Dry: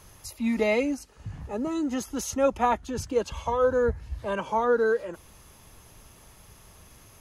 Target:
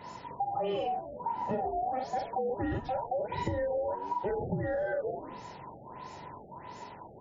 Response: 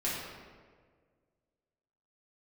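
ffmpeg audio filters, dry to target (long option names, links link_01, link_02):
-filter_complex "[0:a]afftfilt=real='real(if(between(b,1,1008),(2*floor((b-1)/48)+1)*48-b,b),0)':imag='imag(if(between(b,1,1008),(2*floor((b-1)/48)+1)*48-b,b),0)*if(between(b,1,1008),-1,1)':win_size=2048:overlap=0.75,asplit=2[link_01][link_02];[link_02]adelay=43,volume=-3dB[link_03];[link_01][link_03]amix=inputs=2:normalize=0,alimiter=limit=-21.5dB:level=0:latency=1:release=56,acontrast=64,highpass=82,flanger=delay=3.1:depth=4.9:regen=-88:speed=1.5:shape=triangular,tiltshelf=frequency=730:gain=5.5,asplit=2[link_04][link_05];[link_05]asplit=4[link_06][link_07][link_08][link_09];[link_06]adelay=94,afreqshift=-83,volume=-16.5dB[link_10];[link_07]adelay=188,afreqshift=-166,volume=-22.5dB[link_11];[link_08]adelay=282,afreqshift=-249,volume=-28.5dB[link_12];[link_09]adelay=376,afreqshift=-332,volume=-34.6dB[link_13];[link_10][link_11][link_12][link_13]amix=inputs=4:normalize=0[link_14];[link_04][link_14]amix=inputs=2:normalize=0,acompressor=threshold=-34dB:ratio=8,afftfilt=real='re*lt(b*sr/1024,810*pow(7400/810,0.5+0.5*sin(2*PI*1.5*pts/sr)))':imag='im*lt(b*sr/1024,810*pow(7400/810,0.5+0.5*sin(2*PI*1.5*pts/sr)))':win_size=1024:overlap=0.75,volume=4.5dB"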